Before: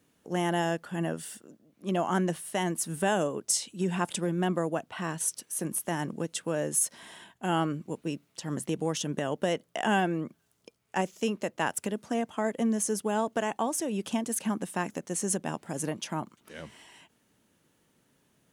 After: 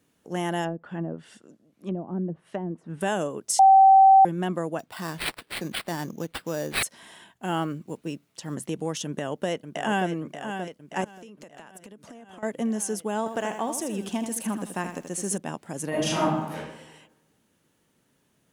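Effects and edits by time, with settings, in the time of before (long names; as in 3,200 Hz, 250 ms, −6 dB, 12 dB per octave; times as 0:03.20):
0:00.64–0:03.01: treble cut that deepens with the level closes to 360 Hz, closed at −24.5 dBFS
0:03.59–0:04.25: beep over 773 Hz −10.5 dBFS
0:04.79–0:06.83: sample-rate reduction 6,400 Hz
0:07.34–0:08.55: one scale factor per block 7 bits
0:09.05–0:10.09: delay throw 580 ms, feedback 65%, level −8 dB
0:11.04–0:12.43: downward compressor 16 to 1, threshold −41 dBFS
0:13.18–0:15.38: feedback echo at a low word length 80 ms, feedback 35%, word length 9 bits, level −8 dB
0:15.89–0:16.55: thrown reverb, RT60 1.1 s, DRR −10.5 dB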